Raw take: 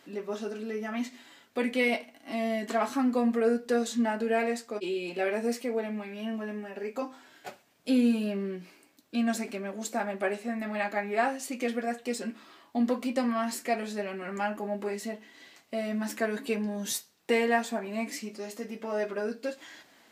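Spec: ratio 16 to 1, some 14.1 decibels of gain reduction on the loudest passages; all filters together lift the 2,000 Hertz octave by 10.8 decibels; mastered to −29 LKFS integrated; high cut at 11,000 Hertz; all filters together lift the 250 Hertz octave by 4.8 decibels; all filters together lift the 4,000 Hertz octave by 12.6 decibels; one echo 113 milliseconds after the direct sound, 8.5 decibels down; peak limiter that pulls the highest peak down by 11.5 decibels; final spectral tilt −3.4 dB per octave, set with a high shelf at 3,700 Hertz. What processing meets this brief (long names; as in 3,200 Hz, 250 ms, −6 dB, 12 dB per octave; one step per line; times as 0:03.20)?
low-pass filter 11,000 Hz
parametric band 250 Hz +5 dB
parametric band 2,000 Hz +8.5 dB
high-shelf EQ 3,700 Hz +9 dB
parametric band 4,000 Hz +7.5 dB
downward compressor 16 to 1, threshold −28 dBFS
brickwall limiter −27 dBFS
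single-tap delay 113 ms −8.5 dB
level +6.5 dB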